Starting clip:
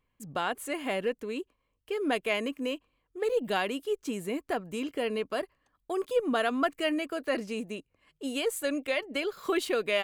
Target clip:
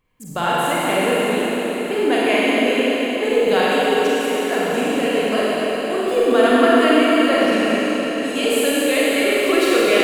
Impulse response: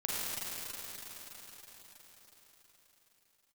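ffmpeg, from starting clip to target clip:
-filter_complex "[0:a]asplit=3[s0][s1][s2];[s0]afade=t=out:st=4.1:d=0.02[s3];[s1]highpass=550,afade=t=in:st=4.1:d=0.02,afade=t=out:st=4.55:d=0.02[s4];[s2]afade=t=in:st=4.55:d=0.02[s5];[s3][s4][s5]amix=inputs=3:normalize=0[s6];[1:a]atrim=start_sample=2205[s7];[s6][s7]afir=irnorm=-1:irlink=0,volume=2.51"

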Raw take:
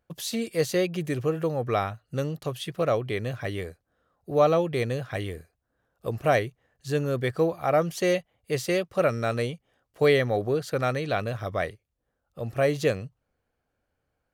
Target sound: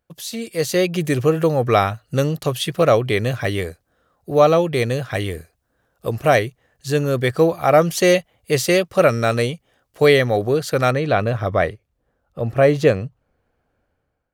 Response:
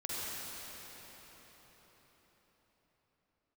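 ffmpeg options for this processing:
-af "asetnsamples=n=441:p=0,asendcmd='10.91 highshelf g -9.5',highshelf=f=3300:g=4,dynaudnorm=f=300:g=5:m=5.62,volume=0.891"

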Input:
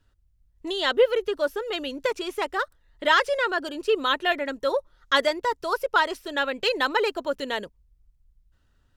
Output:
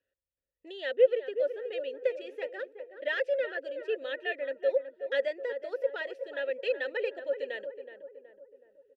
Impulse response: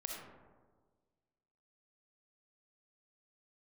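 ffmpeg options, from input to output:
-filter_complex "[0:a]asplit=3[s0][s1][s2];[s0]bandpass=f=530:t=q:w=8,volume=1[s3];[s1]bandpass=f=1840:t=q:w=8,volume=0.501[s4];[s2]bandpass=f=2480:t=q:w=8,volume=0.355[s5];[s3][s4][s5]amix=inputs=3:normalize=0,asplit=2[s6][s7];[s7]adelay=372,lowpass=f=1200:p=1,volume=0.376,asplit=2[s8][s9];[s9]adelay=372,lowpass=f=1200:p=1,volume=0.53,asplit=2[s10][s11];[s11]adelay=372,lowpass=f=1200:p=1,volume=0.53,asplit=2[s12][s13];[s13]adelay=372,lowpass=f=1200:p=1,volume=0.53,asplit=2[s14][s15];[s15]adelay=372,lowpass=f=1200:p=1,volume=0.53,asplit=2[s16][s17];[s17]adelay=372,lowpass=f=1200:p=1,volume=0.53[s18];[s6][s8][s10][s12][s14][s16][s18]amix=inputs=7:normalize=0"

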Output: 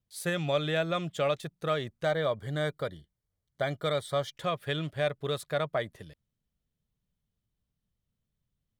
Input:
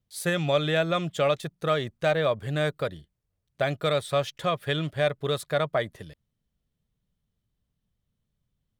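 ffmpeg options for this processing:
-filter_complex "[0:a]asettb=1/sr,asplit=3[s0][s1][s2];[s0]atrim=end=2.044[s3];[s1]atrim=start=2.04:end=4.35,asetpts=PTS-STARTPTS,afade=t=in:d=0.004:c=qsin,afade=t=out:st=2.306:d=0.004:c=qsin,asuperstop=centerf=2600:order=20:qfactor=5.8[s4];[s2]atrim=start=4.346[s5];[s3][s4]acrossfade=d=0.004:c1=hsin:c2=qsin[s6];[s6][s5]acrossfade=d=0.004:c1=qsin:c2=hsin,volume=0.596"

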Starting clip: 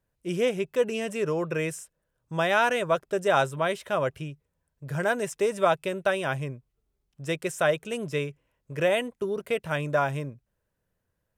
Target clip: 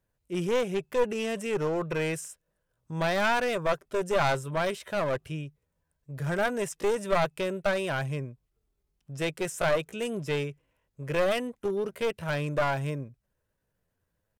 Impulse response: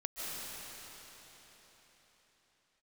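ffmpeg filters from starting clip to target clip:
-af "aeval=exprs='clip(val(0),-1,0.0473)':c=same,atempo=0.79"

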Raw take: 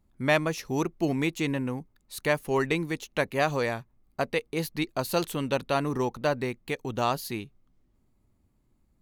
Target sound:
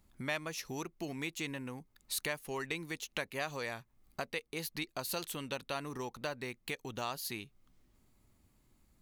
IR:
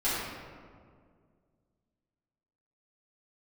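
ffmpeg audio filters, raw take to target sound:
-af "acompressor=threshold=0.00562:ratio=2.5,tiltshelf=f=1200:g=-5,volume=1.58"

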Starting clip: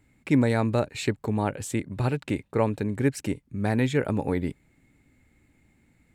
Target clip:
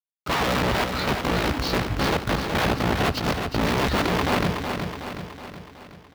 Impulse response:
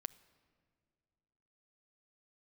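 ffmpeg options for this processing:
-filter_complex "[0:a]asetrate=24046,aresample=44100,atempo=1.83401,firequalizer=gain_entry='entry(100,0);entry(2200,-8);entry(4600,4)':delay=0.05:min_phase=1,aeval=exprs='(mod(20*val(0)+1,2)-1)/20':c=same,acrusher=bits=6:mix=0:aa=0.000001,highpass=40,aecho=1:1:371|742|1113|1484|1855|2226|2597:0.501|0.271|0.146|0.0789|0.0426|0.023|0.0124,asplit=2[s0][s1];[1:a]atrim=start_sample=2205,lowpass=4900[s2];[s1][s2]afir=irnorm=-1:irlink=0,volume=2.66[s3];[s0][s3]amix=inputs=2:normalize=0"

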